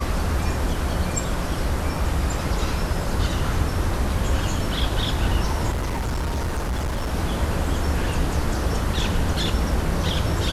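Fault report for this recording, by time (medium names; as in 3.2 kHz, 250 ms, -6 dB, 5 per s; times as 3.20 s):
5.72–7.14 s: clipped -21.5 dBFS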